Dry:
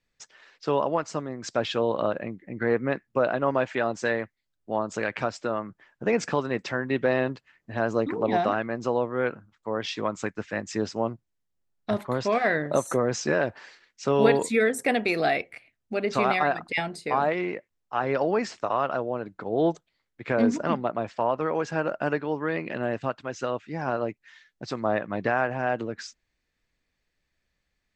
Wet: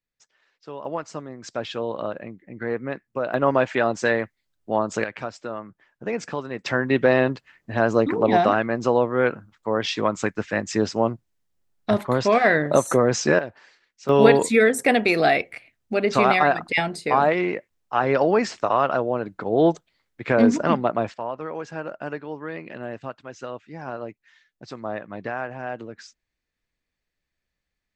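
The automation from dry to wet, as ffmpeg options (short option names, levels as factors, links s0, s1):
-af "asetnsamples=n=441:p=0,asendcmd='0.85 volume volume -3dB;3.34 volume volume 5dB;5.04 volume volume -3.5dB;6.66 volume volume 6dB;13.39 volume volume -5.5dB;14.09 volume volume 5.5dB;21.14 volume volume -5dB',volume=0.251"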